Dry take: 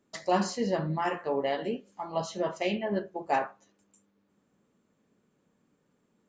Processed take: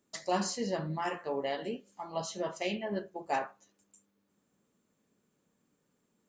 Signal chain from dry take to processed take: treble shelf 4.9 kHz +11 dB; trim -5 dB

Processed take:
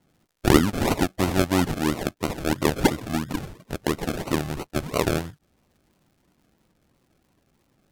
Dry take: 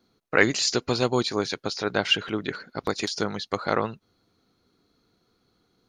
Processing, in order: decimation with a swept rate 27×, swing 60% 4 Hz; wide varispeed 0.743×; crackle 170 per s -57 dBFS; trim +2 dB

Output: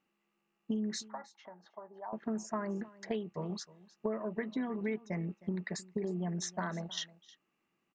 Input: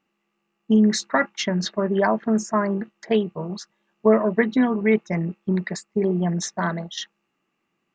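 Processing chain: compression 6:1, threshold -27 dBFS, peak gain reduction 15 dB; 1.08–2.13 s: band-pass filter 840 Hz, Q 4.1; on a send: delay 312 ms -20.5 dB; on the sum: trim -6 dB

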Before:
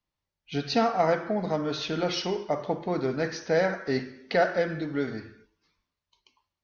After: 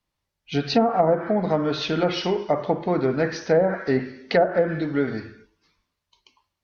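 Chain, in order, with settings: low-pass that closes with the level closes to 740 Hz, closed at -19 dBFS; trim +6 dB

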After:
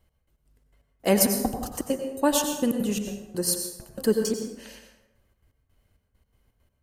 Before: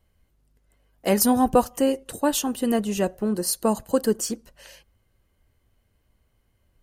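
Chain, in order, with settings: trance gate "x..x.xx.x..xx" 166 bpm -60 dB; plate-style reverb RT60 0.95 s, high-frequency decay 0.6×, pre-delay 80 ms, DRR 4.5 dB

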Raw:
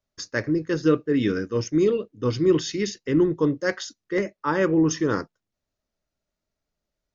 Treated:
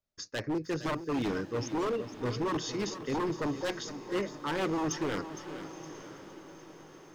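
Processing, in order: wavefolder -19 dBFS; echo that smears into a reverb 969 ms, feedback 53%, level -14 dB; bit-crushed delay 462 ms, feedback 35%, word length 9-bit, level -12 dB; trim -7 dB

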